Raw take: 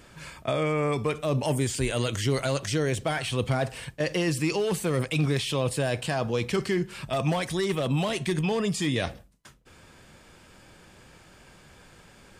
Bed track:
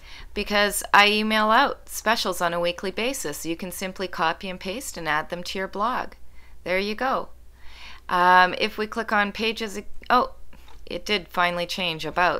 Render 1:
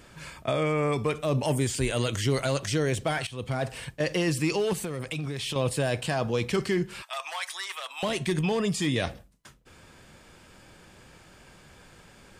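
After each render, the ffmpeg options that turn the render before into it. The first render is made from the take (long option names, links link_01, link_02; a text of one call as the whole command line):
ffmpeg -i in.wav -filter_complex "[0:a]asettb=1/sr,asplit=3[link_01][link_02][link_03];[link_01]atrim=end=4.734[link_04];[link_02]atrim=start=4.73:end=5.56,asetpts=PTS-STARTPTS,afade=type=in:duration=0.004:curve=qsin,afade=type=out:start_time=0.826:duration=0.004:curve=qsin,acompressor=threshold=-28dB:ratio=12:attack=3.2:release=140:knee=1:detection=peak[link_05];[link_03]atrim=start=5.556[link_06];[link_04][link_05]acrossfade=duration=0.004:curve1=hsin:curve2=qsin[link_07];[link_07][link_06]acrossfade=duration=0.004:curve1=qsin:curve2=hsin,asettb=1/sr,asplit=3[link_08][link_09][link_10];[link_08]atrim=end=7.024[link_11];[link_09]atrim=start=7.02:end=8.03,asetpts=PTS-STARTPTS,afade=type=in:duration=0.004:curve=qsin,afade=type=out:start_time=1.006:duration=0.004:curve=qsin,highpass=frequency=920:width=0.5412,highpass=frequency=920:width=1.3066[link_12];[link_10]atrim=start=8.026[link_13];[link_11][link_12]acrossfade=duration=0.004:curve1=hsin:curve2=qsin[link_14];[link_14][link_13]acrossfade=duration=0.004:curve1=qsin:curve2=hsin,asplit=2[link_15][link_16];[link_15]atrim=end=3.27,asetpts=PTS-STARTPTS,afade=type=out:start_time=3.266:duration=0.004:curve=hsin:silence=0.16788[link_17];[link_16]atrim=start=3.27,asetpts=PTS-STARTPTS,afade=type=in:duration=0.48:silence=0.16788[link_18];[link_17][link_18]concat=n=2:v=0:a=1" out.wav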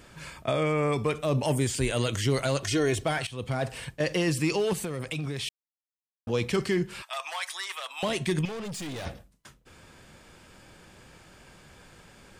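ffmpeg -i in.wav -filter_complex "[0:a]asettb=1/sr,asplit=3[link_01][link_02][link_03];[link_01]atrim=end=2.634[link_04];[link_02]atrim=start=2.63:end=3.05,asetpts=PTS-STARTPTS,afade=type=in:duration=0.004:curve=qsin,afade=type=out:start_time=0.416:duration=0.004:curve=qsin,aecho=1:1:2.8:0.65,atrim=end_sample=18522[link_05];[link_03]atrim=start=3.046[link_06];[link_04][link_05]acrossfade=duration=0.004:curve1=hsin:curve2=qsin[link_07];[link_07][link_06]acrossfade=duration=0.004:curve1=qsin:curve2=hsin,asettb=1/sr,asplit=3[link_08][link_09][link_10];[link_08]atrim=end=8.454[link_11];[link_09]atrim=start=8.45:end=9.06,asetpts=PTS-STARTPTS,afade=type=in:duration=0.004:curve=qsin,afade=type=out:start_time=0.606:duration=0.004:curve=qsin,aeval=exprs='(tanh(50.1*val(0)+0.2)-tanh(0.2))/50.1':channel_layout=same[link_12];[link_10]atrim=start=9.056[link_13];[link_11][link_12]acrossfade=duration=0.004:curve1=hsin:curve2=qsin[link_14];[link_14][link_13]acrossfade=duration=0.004:curve1=qsin:curve2=hsin,asplit=3[link_15][link_16][link_17];[link_15]atrim=end=5.49,asetpts=PTS-STARTPTS,afade=type=out:start_time=5.486:duration=0.004:curve=hsin[link_18];[link_16]atrim=start=5.49:end=6.27,asetpts=PTS-STARTPTS,volume=0[link_19];[link_17]atrim=start=6.27,asetpts=PTS-STARTPTS,afade=type=in:duration=0.004:curve=hsin[link_20];[link_18][link_19][link_20]concat=n=3:v=0:a=1" out.wav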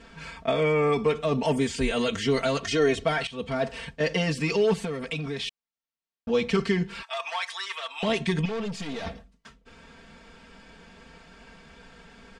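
ffmpeg -i in.wav -af "lowpass=5000,aecho=1:1:4.4:0.96" out.wav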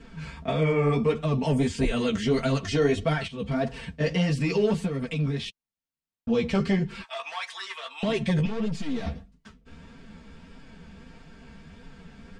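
ffmpeg -i in.wav -filter_complex "[0:a]flanger=delay=6.5:depth=8.8:regen=12:speed=1.6:shape=triangular,acrossover=split=270|2800[link_01][link_02][link_03];[link_01]aeval=exprs='0.0891*sin(PI/2*2.24*val(0)/0.0891)':channel_layout=same[link_04];[link_04][link_02][link_03]amix=inputs=3:normalize=0" out.wav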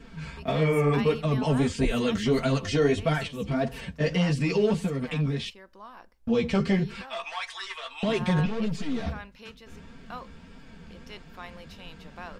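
ffmpeg -i in.wav -i bed.wav -filter_complex "[1:a]volume=-21.5dB[link_01];[0:a][link_01]amix=inputs=2:normalize=0" out.wav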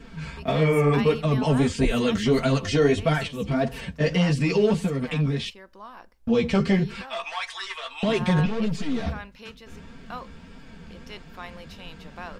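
ffmpeg -i in.wav -af "volume=3dB" out.wav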